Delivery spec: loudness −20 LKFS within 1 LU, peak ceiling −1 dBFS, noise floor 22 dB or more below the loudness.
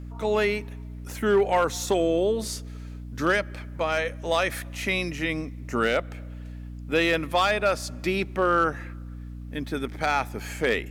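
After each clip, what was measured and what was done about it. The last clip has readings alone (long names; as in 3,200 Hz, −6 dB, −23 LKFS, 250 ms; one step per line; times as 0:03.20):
share of clipped samples 0.3%; peaks flattened at −14.0 dBFS; mains hum 60 Hz; hum harmonics up to 300 Hz; level of the hum −35 dBFS; integrated loudness −25.5 LKFS; sample peak −14.0 dBFS; target loudness −20.0 LKFS
→ clipped peaks rebuilt −14 dBFS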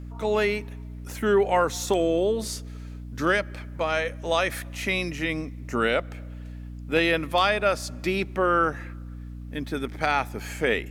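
share of clipped samples 0.0%; mains hum 60 Hz; hum harmonics up to 300 Hz; level of the hum −35 dBFS
→ hum removal 60 Hz, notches 5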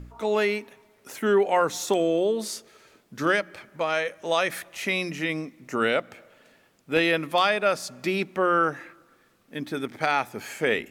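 mains hum none found; integrated loudness −25.5 LKFS; sample peak −7.0 dBFS; target loudness −20.0 LKFS
→ level +5.5 dB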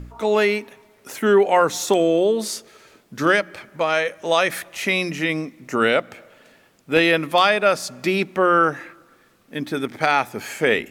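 integrated loudness −20.0 LKFS; sample peak −1.5 dBFS; background noise floor −56 dBFS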